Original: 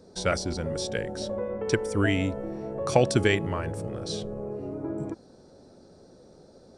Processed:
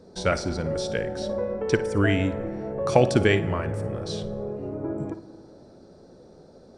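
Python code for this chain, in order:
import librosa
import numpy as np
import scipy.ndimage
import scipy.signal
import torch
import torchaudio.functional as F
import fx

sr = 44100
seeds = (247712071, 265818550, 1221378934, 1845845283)

y = fx.high_shelf(x, sr, hz=5500.0, db=-9.0)
y = fx.room_flutter(y, sr, wall_m=9.6, rt60_s=0.22)
y = fx.rev_plate(y, sr, seeds[0], rt60_s=2.5, hf_ratio=0.35, predelay_ms=0, drr_db=14.5)
y = y * 10.0 ** (2.5 / 20.0)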